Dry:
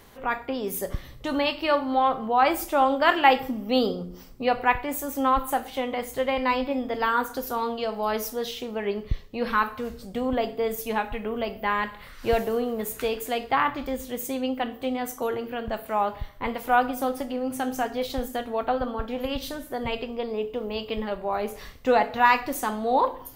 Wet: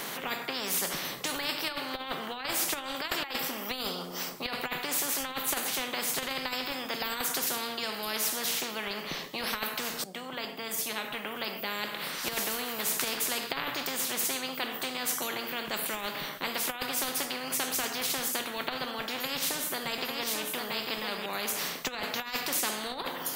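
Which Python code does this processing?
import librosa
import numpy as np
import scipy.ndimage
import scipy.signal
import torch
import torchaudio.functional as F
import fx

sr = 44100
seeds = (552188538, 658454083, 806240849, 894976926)

y = fx.echo_single(x, sr, ms=847, db=-6.5, at=(19.13, 21.26))
y = fx.edit(y, sr, fx.fade_in_from(start_s=10.04, length_s=2.64, floor_db=-16.5), tone=tone)
y = scipy.signal.sosfilt(scipy.signal.ellip(4, 1.0, 40, 160.0, 'highpass', fs=sr, output='sos'), y)
y = fx.over_compress(y, sr, threshold_db=-25.0, ratio=-0.5)
y = fx.spectral_comp(y, sr, ratio=4.0)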